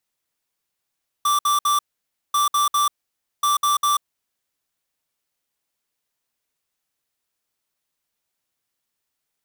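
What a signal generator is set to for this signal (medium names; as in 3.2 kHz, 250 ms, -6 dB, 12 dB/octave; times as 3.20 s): beep pattern square 1.17 kHz, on 0.14 s, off 0.06 s, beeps 3, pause 0.55 s, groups 3, -18.5 dBFS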